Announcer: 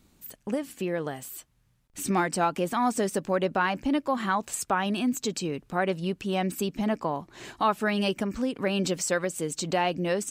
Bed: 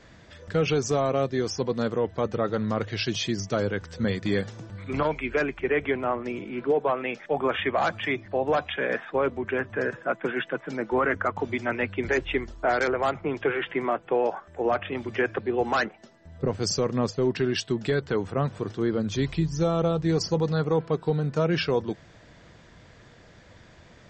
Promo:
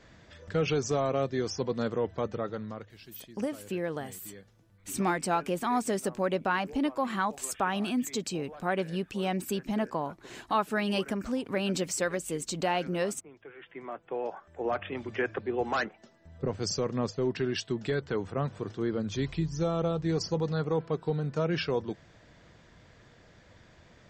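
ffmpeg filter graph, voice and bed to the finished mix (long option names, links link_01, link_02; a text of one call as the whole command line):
ffmpeg -i stem1.wav -i stem2.wav -filter_complex "[0:a]adelay=2900,volume=-3dB[link_01];[1:a]volume=14.5dB,afade=type=out:start_time=2.12:duration=0.84:silence=0.105925,afade=type=in:start_time=13.52:duration=1.34:silence=0.11885[link_02];[link_01][link_02]amix=inputs=2:normalize=0" out.wav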